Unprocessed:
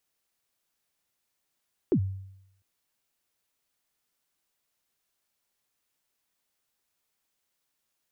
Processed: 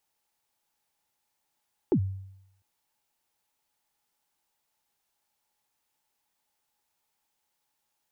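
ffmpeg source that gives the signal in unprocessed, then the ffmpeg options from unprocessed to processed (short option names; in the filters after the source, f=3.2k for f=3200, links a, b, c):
-f lavfi -i "aevalsrc='0.133*pow(10,-3*t/0.8)*sin(2*PI*(430*0.076/log(96/430)*(exp(log(96/430)*min(t,0.076)/0.076)-1)+96*max(t-0.076,0)))':d=0.7:s=44100"
-af "equalizer=f=850:t=o:w=0.23:g=13.5"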